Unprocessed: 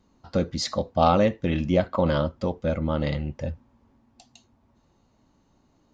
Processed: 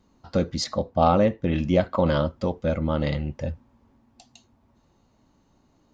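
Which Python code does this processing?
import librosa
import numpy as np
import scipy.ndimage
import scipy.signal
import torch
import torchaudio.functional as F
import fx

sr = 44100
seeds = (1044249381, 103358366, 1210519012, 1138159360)

y = fx.high_shelf(x, sr, hz=2400.0, db=-8.5, at=(0.64, 1.54))
y = F.gain(torch.from_numpy(y), 1.0).numpy()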